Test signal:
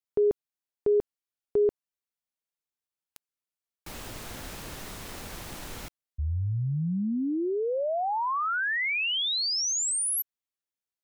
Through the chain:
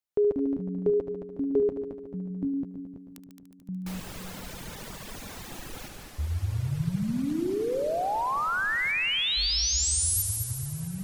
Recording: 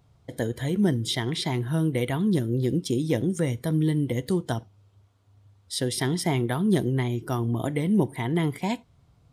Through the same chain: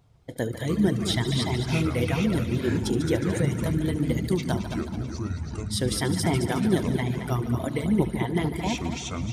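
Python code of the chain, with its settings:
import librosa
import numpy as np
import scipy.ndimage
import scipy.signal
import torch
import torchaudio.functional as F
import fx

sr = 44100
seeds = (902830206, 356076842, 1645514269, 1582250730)

y = fx.echo_heads(x, sr, ms=73, heads='all three', feedback_pct=65, wet_db=-9)
y = fx.dereverb_blind(y, sr, rt60_s=1.4)
y = fx.echo_pitch(y, sr, ms=101, semitones=-7, count=2, db_per_echo=-6.0)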